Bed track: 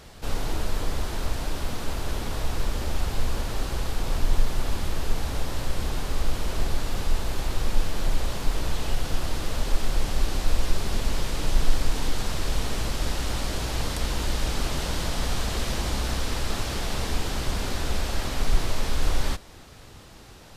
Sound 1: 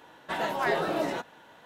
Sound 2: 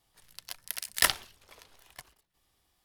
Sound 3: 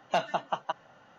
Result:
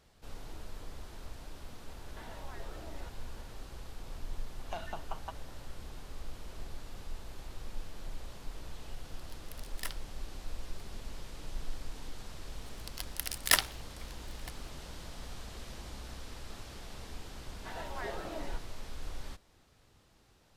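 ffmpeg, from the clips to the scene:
-filter_complex "[1:a]asplit=2[s0][s1];[2:a]asplit=2[s2][s3];[0:a]volume=0.126[s4];[s0]acompressor=threshold=0.0112:ratio=6:attack=3.2:release=140:knee=1:detection=peak[s5];[3:a]acompressor=threshold=0.0282:ratio=6:attack=3.2:release=140:knee=1:detection=peak[s6];[s5]atrim=end=1.65,asetpts=PTS-STARTPTS,volume=0.355,afade=t=in:d=0.004:c=hsin,afade=t=out:st=1.646:d=0.004:c=hsin,adelay=1880[s7];[s6]atrim=end=1.18,asetpts=PTS-STARTPTS,volume=0.562,afade=t=in:d=0.004:c=hsin,afade=t=out:st=1.176:d=0.004:c=hsin,adelay=4590[s8];[s2]atrim=end=2.84,asetpts=PTS-STARTPTS,volume=0.133,afade=t=in:d=0.004:c=hsin,afade=t=out:st=2.836:d=0.004:c=hsin,adelay=8810[s9];[s3]atrim=end=2.84,asetpts=PTS-STARTPTS,volume=0.891,afade=t=in:d=0.004:c=hsin,afade=t=out:st=2.836:d=0.004:c=hsin,adelay=12490[s10];[s1]atrim=end=1.65,asetpts=PTS-STARTPTS,volume=0.211,afade=t=in:d=0.004:c=hsin,afade=t=out:st=1.646:d=0.004:c=hsin,adelay=17360[s11];[s4][s7][s8][s9][s10][s11]amix=inputs=6:normalize=0"

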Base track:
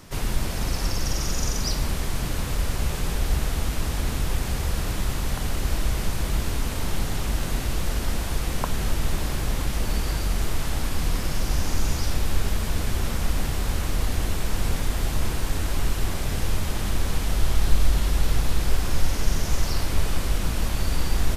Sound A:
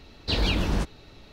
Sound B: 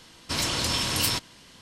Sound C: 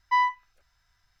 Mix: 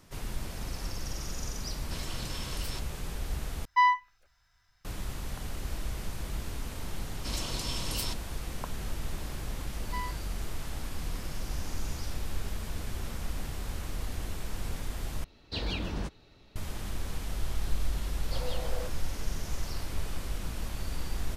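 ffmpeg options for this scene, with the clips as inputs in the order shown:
-filter_complex "[2:a]asplit=2[s0][s1];[3:a]asplit=2[s2][s3];[1:a]asplit=2[s4][s5];[0:a]volume=0.282[s6];[s0]alimiter=limit=0.133:level=0:latency=1:release=71[s7];[s1]equalizer=f=1700:t=o:w=0.77:g=-7.5[s8];[s3]aemphasis=mode=production:type=50kf[s9];[s5]afreqshift=450[s10];[s6]asplit=3[s11][s12][s13];[s11]atrim=end=3.654[s14];[s2]atrim=end=1.2[s15];[s12]atrim=start=4.846:end=15.244[s16];[s4]atrim=end=1.32,asetpts=PTS-STARTPTS,volume=0.355[s17];[s13]atrim=start=16.556[s18];[s7]atrim=end=1.61,asetpts=PTS-STARTPTS,volume=0.211,afade=t=in:d=0.004:c=hsin,afade=t=out:st=1.606:d=0.004:c=hsin,adelay=1610[s19];[s8]atrim=end=1.61,asetpts=PTS-STARTPTS,volume=0.335,afade=t=in:d=0.004:c=hsin,afade=t=out:st=1.606:d=0.004:c=hsin,adelay=6950[s20];[s9]atrim=end=1.2,asetpts=PTS-STARTPTS,volume=0.15,afade=t=in:d=0.004:c=hsin,afade=t=out:st=1.196:d=0.004:c=hsin,adelay=9810[s21];[s10]atrim=end=1.32,asetpts=PTS-STARTPTS,volume=0.158,afade=t=in:d=0.004:c=hsin,afade=t=out:st=1.316:d=0.004:c=hsin,adelay=18030[s22];[s14][s15]acrossfade=d=0.004:c1=hsin:c2=hsin[s23];[s23][s16]acrossfade=d=0.004:c1=hsin:c2=hsin[s24];[s24][s17]acrossfade=d=0.004:c1=hsin:c2=hsin[s25];[s25][s18]acrossfade=d=0.004:c1=hsin:c2=hsin[s26];[s26][s19][s20][s21][s22]amix=inputs=5:normalize=0"

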